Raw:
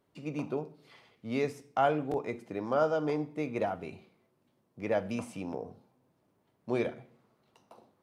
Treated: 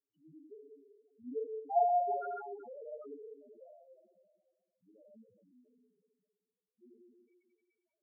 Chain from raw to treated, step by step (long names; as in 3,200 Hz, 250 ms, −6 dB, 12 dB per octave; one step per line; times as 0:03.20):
source passing by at 0:01.79, 13 m/s, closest 2.3 metres
high-shelf EQ 3,800 Hz +5.5 dB
output level in coarse steps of 12 dB
echo through a band-pass that steps 191 ms, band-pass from 1,300 Hz, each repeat 0.7 octaves, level −2 dB
convolution reverb RT60 2.0 s, pre-delay 25 ms, DRR −3.5 dB
spectral peaks only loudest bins 2
level +4 dB